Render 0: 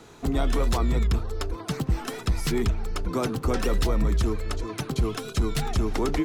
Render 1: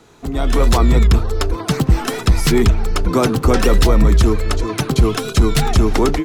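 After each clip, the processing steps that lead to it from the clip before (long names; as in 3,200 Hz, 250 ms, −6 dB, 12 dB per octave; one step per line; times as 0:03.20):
automatic gain control gain up to 12 dB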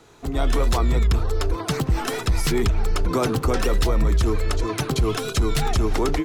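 parametric band 210 Hz −5 dB 0.71 octaves
brickwall limiter −10.5 dBFS, peak gain reduction 6 dB
level −2.5 dB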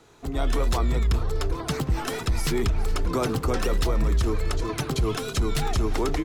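echo with shifted repeats 414 ms, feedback 56%, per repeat −94 Hz, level −18 dB
level −3.5 dB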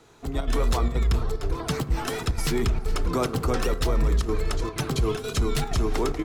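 square-wave tremolo 2.1 Hz, depth 65%, duty 85%
on a send at −12 dB: convolution reverb RT60 1.1 s, pre-delay 3 ms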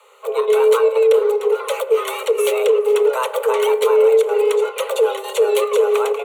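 phaser with its sweep stopped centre 1,300 Hz, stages 6
frequency shifter +390 Hz
level +8.5 dB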